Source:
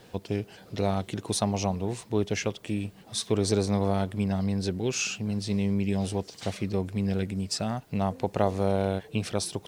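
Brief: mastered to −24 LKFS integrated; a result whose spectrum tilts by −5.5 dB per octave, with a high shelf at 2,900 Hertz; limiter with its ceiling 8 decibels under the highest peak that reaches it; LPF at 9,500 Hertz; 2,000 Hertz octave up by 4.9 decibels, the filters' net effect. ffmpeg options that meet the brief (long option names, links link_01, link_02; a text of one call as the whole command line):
ffmpeg -i in.wav -af "lowpass=9500,equalizer=frequency=2000:width_type=o:gain=8.5,highshelf=frequency=2900:gain=-4,volume=6dB,alimiter=limit=-10dB:level=0:latency=1" out.wav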